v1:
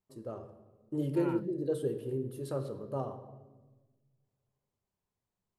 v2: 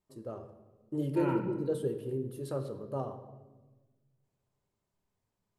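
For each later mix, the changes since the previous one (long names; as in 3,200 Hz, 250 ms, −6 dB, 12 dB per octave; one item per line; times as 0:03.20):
second voice: send on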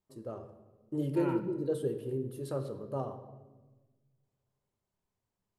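second voice: send −7.5 dB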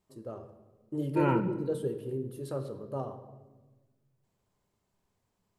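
second voice +9.5 dB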